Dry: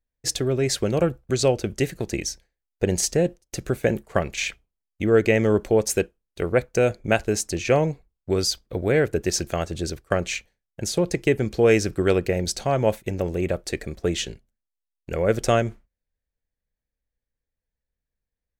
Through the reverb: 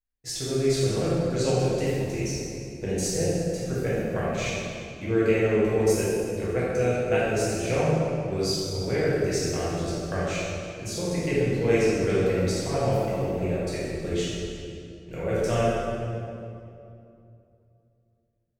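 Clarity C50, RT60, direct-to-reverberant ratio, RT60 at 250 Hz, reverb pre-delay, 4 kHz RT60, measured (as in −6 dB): −4.0 dB, 2.6 s, −10.0 dB, 3.3 s, 5 ms, 1.8 s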